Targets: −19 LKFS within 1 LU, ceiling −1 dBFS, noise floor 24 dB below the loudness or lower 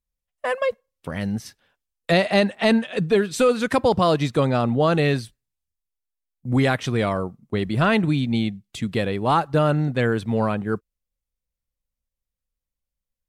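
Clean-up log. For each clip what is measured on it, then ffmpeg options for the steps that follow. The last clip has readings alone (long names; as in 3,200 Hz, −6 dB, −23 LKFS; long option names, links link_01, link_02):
integrated loudness −22.0 LKFS; sample peak −7.5 dBFS; target loudness −19.0 LKFS
→ -af "volume=3dB"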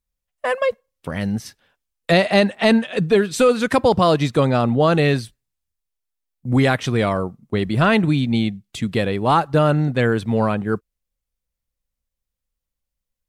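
integrated loudness −19.0 LKFS; sample peak −4.5 dBFS; background noise floor −83 dBFS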